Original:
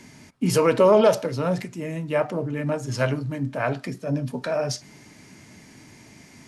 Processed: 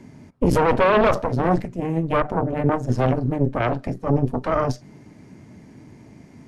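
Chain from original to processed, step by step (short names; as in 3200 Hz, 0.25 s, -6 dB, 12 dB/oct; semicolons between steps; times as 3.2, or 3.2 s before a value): tilt shelf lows +9 dB, about 1300 Hz; added harmonics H 2 -6 dB, 3 -19 dB, 6 -14 dB, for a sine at -1 dBFS; limiter -8 dBFS, peak gain reduction 9.5 dB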